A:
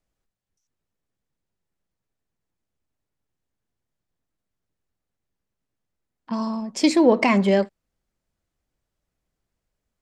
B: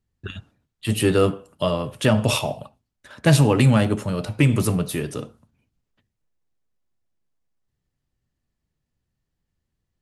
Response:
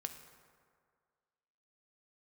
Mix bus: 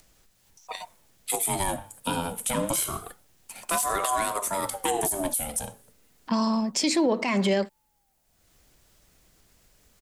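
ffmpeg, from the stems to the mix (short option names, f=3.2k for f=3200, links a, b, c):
-filter_complex "[0:a]acompressor=mode=upward:threshold=-52dB:ratio=2.5,alimiter=limit=-14dB:level=0:latency=1:release=164,volume=3dB[a];[1:a]aexciter=amount=5.4:drive=6.8:freq=7k,aeval=exprs='val(0)*sin(2*PI*610*n/s+610*0.45/0.28*sin(2*PI*0.28*n/s))':c=same,adelay=450,volume=-2.5dB[b];[a][b]amix=inputs=2:normalize=0,highshelf=f=2.4k:g=8.5,acrossover=split=240|3000[c][d][e];[c]acompressor=threshold=-24dB:ratio=6[f];[f][d][e]amix=inputs=3:normalize=0,alimiter=limit=-15dB:level=0:latency=1:release=160"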